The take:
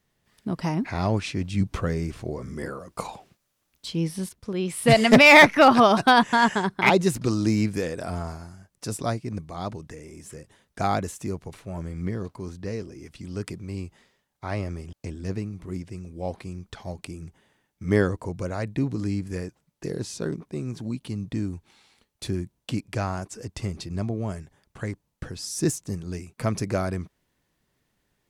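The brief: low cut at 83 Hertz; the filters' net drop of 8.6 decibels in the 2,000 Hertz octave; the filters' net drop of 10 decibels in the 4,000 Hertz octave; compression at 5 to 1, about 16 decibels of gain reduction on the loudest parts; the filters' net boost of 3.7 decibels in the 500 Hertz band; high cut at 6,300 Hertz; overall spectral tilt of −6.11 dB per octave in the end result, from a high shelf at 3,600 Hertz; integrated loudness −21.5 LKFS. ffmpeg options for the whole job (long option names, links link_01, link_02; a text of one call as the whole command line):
ffmpeg -i in.wav -af "highpass=83,lowpass=6300,equalizer=frequency=500:width_type=o:gain=5.5,equalizer=frequency=2000:width_type=o:gain=-7,highshelf=frequency=3600:gain=-8.5,equalizer=frequency=4000:width_type=o:gain=-4.5,acompressor=threshold=-27dB:ratio=5,volume=12.5dB" out.wav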